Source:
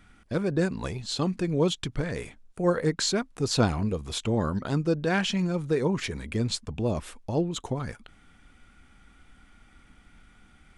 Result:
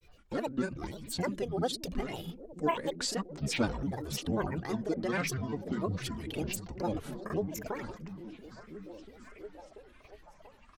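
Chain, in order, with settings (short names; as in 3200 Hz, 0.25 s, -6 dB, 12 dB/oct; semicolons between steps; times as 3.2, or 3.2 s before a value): comb 3.4 ms, depth 75%; grains, grains 20/s, spray 22 ms, pitch spread up and down by 12 st; on a send: delay with a stepping band-pass 0.686 s, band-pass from 160 Hz, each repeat 0.7 oct, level -6 dB; on the sum: gain -6.5 dB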